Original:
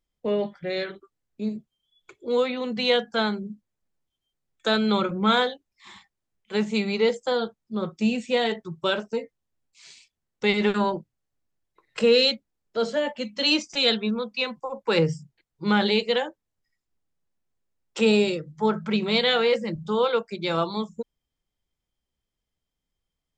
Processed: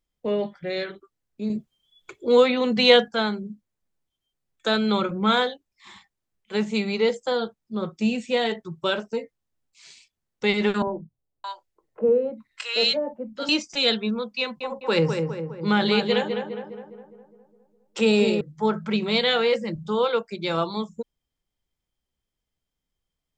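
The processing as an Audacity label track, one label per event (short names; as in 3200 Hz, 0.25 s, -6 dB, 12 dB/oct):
1.500000	3.080000	gain +6.5 dB
10.820000	13.490000	three bands offset in time mids, lows, highs 50/620 ms, splits 200/980 Hz
14.400000	18.410000	darkening echo 0.205 s, feedback 56%, low-pass 1800 Hz, level -5 dB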